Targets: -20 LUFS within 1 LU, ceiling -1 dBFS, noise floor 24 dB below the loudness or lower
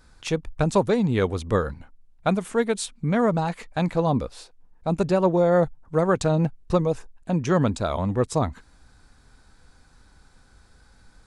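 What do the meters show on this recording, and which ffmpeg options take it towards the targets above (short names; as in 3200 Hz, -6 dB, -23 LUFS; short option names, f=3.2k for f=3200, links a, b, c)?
loudness -24.0 LUFS; peak -8.5 dBFS; loudness target -20.0 LUFS
-> -af "volume=4dB"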